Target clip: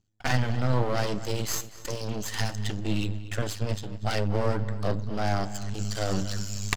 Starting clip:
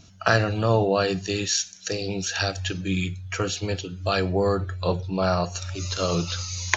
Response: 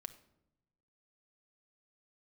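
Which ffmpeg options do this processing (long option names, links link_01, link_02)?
-filter_complex "[0:a]agate=range=-24dB:threshold=-35dB:ratio=16:detection=peak,lowshelf=frequency=130:gain=11,asetrate=49501,aresample=44100,atempo=0.890899,aeval=exprs='max(val(0),0)':channel_layout=same,asplit=2[link_01][link_02];[link_02]adelay=240,lowpass=frequency=4500:poles=1,volume=-15dB,asplit=2[link_03][link_04];[link_04]adelay=240,lowpass=frequency=4500:poles=1,volume=0.33,asplit=2[link_05][link_06];[link_06]adelay=240,lowpass=frequency=4500:poles=1,volume=0.33[link_07];[link_01][link_03][link_05][link_07]amix=inputs=4:normalize=0,volume=-2.5dB"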